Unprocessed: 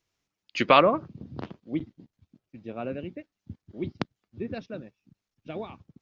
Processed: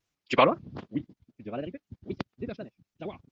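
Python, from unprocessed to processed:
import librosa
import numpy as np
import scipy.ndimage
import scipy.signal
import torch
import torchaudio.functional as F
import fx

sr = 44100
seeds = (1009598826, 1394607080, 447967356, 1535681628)

y = fx.wow_flutter(x, sr, seeds[0], rate_hz=2.1, depth_cents=120.0)
y = fx.stretch_vocoder(y, sr, factor=0.55)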